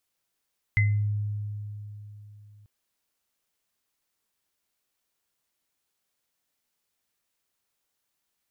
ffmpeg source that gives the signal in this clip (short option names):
-f lavfi -i "aevalsrc='0.119*pow(10,-3*t/3.49)*sin(2*PI*104*t)+0.106*pow(10,-3*t/0.32)*sin(2*PI*2050*t)':d=1.89:s=44100"